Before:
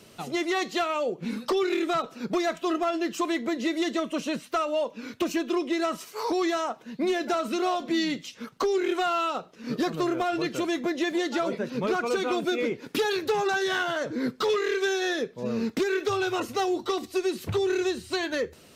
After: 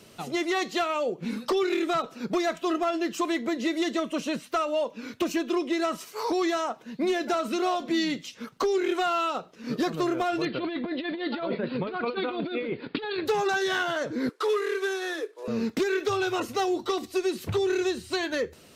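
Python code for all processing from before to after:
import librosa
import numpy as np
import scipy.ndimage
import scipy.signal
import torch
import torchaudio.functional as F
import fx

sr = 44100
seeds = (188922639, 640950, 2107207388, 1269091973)

y = fx.chain(x, sr, fx.steep_lowpass(hz=4600.0, slope=96),
    fx.over_compress(threshold_db=-29.0, ratio=-0.5), at=(10.45, 13.26))
y = fx.chain(y, sr, fx.cvsd(bps=64000),
    fx.cheby_ripple_highpass(hz=300.0, ripple_db=6), at=(14.29, 15.48))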